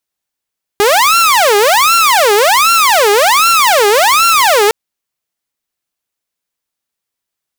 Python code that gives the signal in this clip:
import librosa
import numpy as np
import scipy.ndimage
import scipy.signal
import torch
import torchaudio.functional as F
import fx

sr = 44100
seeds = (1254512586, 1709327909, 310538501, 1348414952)

y = fx.siren(sr, length_s=3.91, kind='wail', low_hz=405.0, high_hz=1370.0, per_s=1.3, wave='saw', level_db=-4.0)